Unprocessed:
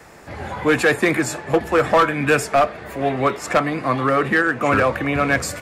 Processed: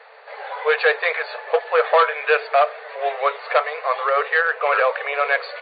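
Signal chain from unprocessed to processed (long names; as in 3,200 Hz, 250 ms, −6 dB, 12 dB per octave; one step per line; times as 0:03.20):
linear-phase brick-wall band-pass 420–4,700 Hz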